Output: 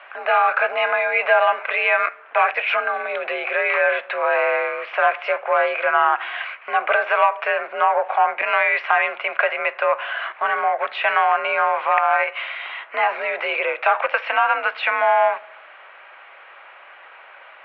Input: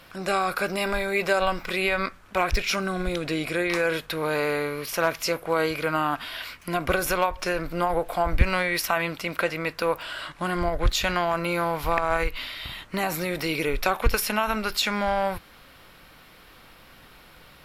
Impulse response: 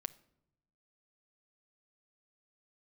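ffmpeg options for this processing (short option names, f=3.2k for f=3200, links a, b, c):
-filter_complex "[0:a]asoftclip=type=tanh:threshold=-15.5dB,asplit=2[a][b];[1:a]atrim=start_sample=2205,lowshelf=f=190:g=8.5[c];[b][c]afir=irnorm=-1:irlink=0,volume=11dB[d];[a][d]amix=inputs=2:normalize=0,highpass=f=540:t=q:w=0.5412,highpass=f=540:t=q:w=1.307,lowpass=f=2.6k:t=q:w=0.5176,lowpass=f=2.6k:t=q:w=0.7071,lowpass=f=2.6k:t=q:w=1.932,afreqshift=59,volume=-1.5dB"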